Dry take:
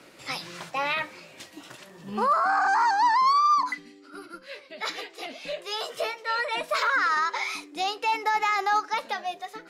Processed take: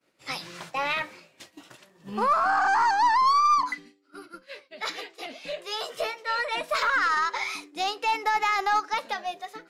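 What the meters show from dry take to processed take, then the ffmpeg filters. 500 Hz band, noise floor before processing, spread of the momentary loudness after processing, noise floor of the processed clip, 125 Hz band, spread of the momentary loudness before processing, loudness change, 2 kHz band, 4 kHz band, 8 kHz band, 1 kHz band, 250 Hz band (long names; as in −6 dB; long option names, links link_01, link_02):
−0.5 dB, −51 dBFS, 16 LU, −63 dBFS, can't be measured, 21 LU, 0.0 dB, 0.0 dB, 0.0 dB, +0.5 dB, 0.0 dB, −1.0 dB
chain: -af "agate=range=-33dB:threshold=-40dB:ratio=3:detection=peak,aeval=exprs='0.2*(cos(1*acos(clip(val(0)/0.2,-1,1)))-cos(1*PI/2))+0.0141*(cos(2*acos(clip(val(0)/0.2,-1,1)))-cos(2*PI/2))+0.00316*(cos(7*acos(clip(val(0)/0.2,-1,1)))-cos(7*PI/2))':channel_layout=same"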